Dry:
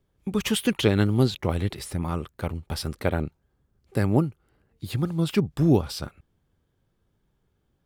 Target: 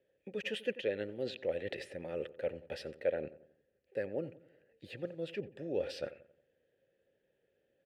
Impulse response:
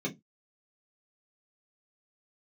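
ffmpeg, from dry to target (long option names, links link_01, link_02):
-filter_complex "[0:a]areverse,acompressor=threshold=-31dB:ratio=6,areverse,asplit=3[link_01][link_02][link_03];[link_01]bandpass=frequency=530:width_type=q:width=8,volume=0dB[link_04];[link_02]bandpass=frequency=1840:width_type=q:width=8,volume=-6dB[link_05];[link_03]bandpass=frequency=2480:width_type=q:width=8,volume=-9dB[link_06];[link_04][link_05][link_06]amix=inputs=3:normalize=0,asplit=2[link_07][link_08];[link_08]adelay=90,lowpass=frequency=1700:poles=1,volume=-16dB,asplit=2[link_09][link_10];[link_10]adelay=90,lowpass=frequency=1700:poles=1,volume=0.47,asplit=2[link_11][link_12];[link_12]adelay=90,lowpass=frequency=1700:poles=1,volume=0.47,asplit=2[link_13][link_14];[link_14]adelay=90,lowpass=frequency=1700:poles=1,volume=0.47[link_15];[link_07][link_09][link_11][link_13][link_15]amix=inputs=5:normalize=0,volume=11.5dB"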